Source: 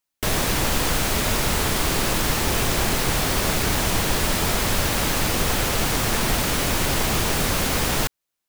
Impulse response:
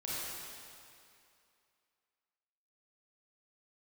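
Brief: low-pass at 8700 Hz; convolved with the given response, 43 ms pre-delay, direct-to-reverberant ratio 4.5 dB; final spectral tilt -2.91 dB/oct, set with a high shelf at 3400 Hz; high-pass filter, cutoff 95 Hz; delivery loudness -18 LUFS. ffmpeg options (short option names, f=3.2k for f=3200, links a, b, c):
-filter_complex "[0:a]highpass=95,lowpass=8.7k,highshelf=f=3.4k:g=8,asplit=2[a][b];[1:a]atrim=start_sample=2205,adelay=43[c];[b][c]afir=irnorm=-1:irlink=0,volume=-8dB[d];[a][d]amix=inputs=2:normalize=0,volume=0.5dB"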